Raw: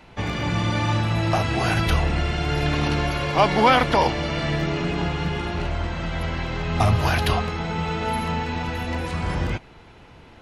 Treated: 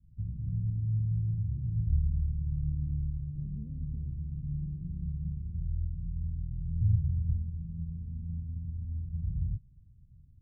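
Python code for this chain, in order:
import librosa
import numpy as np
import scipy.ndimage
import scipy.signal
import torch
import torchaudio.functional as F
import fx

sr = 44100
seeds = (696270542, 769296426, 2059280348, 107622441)

y = scipy.signal.sosfilt(scipy.signal.cheby2(4, 80, 840.0, 'lowpass', fs=sr, output='sos'), x)
y = y * 10.0 ** (-5.0 / 20.0)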